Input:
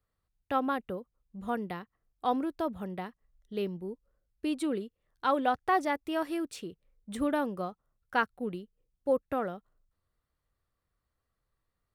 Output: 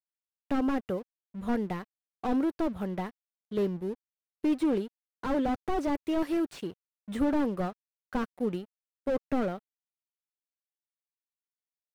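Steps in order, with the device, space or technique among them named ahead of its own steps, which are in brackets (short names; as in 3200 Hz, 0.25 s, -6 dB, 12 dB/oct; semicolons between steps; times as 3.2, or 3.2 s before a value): early transistor amplifier (crossover distortion -56.5 dBFS; slew limiter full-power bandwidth 14 Hz); gain +5.5 dB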